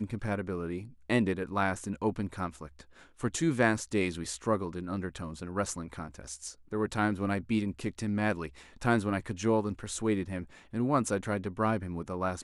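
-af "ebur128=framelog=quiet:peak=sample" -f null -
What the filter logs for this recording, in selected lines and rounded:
Integrated loudness:
  I:         -32.1 LUFS
  Threshold: -42.3 LUFS
Loudness range:
  LRA:         3.0 LU
  Threshold: -52.3 LUFS
  LRA low:   -34.1 LUFS
  LRA high:  -31.1 LUFS
Sample peak:
  Peak:      -10.9 dBFS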